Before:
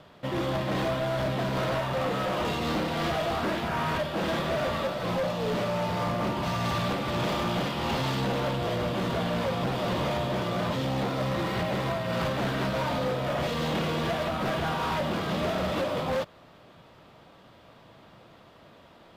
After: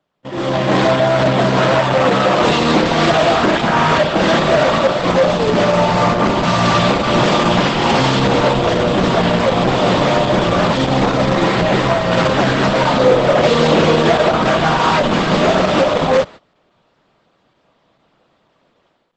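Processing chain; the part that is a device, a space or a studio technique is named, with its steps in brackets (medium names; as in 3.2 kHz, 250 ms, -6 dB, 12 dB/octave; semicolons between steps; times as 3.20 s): 12.99–14.40 s: dynamic bell 440 Hz, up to +5 dB, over -41 dBFS, Q 1.7; video call (high-pass 140 Hz 12 dB/octave; level rider gain up to 15.5 dB; gate -30 dBFS, range -21 dB; trim +1.5 dB; Opus 12 kbps 48 kHz)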